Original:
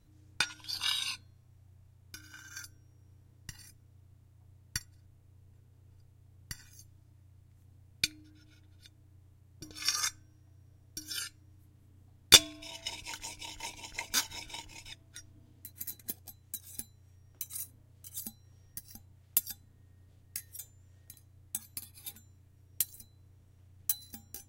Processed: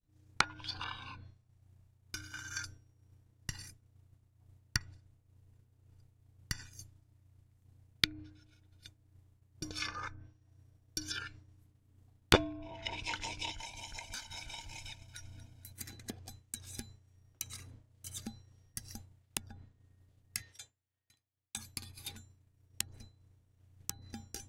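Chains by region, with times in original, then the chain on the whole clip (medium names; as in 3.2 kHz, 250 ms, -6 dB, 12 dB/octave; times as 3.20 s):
13.51–15.73 s: comb 1.3 ms, depth 56% + compression 5:1, threshold -48 dBFS + echo whose repeats swap between lows and highs 118 ms, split 1.1 kHz, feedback 76%, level -12 dB
20.42–21.57 s: low-pass 3.2 kHz + tilt EQ +3 dB/octave
whole clip: expander -50 dBFS; low-pass that closes with the level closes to 920 Hz, closed at -32.5 dBFS; trim +6 dB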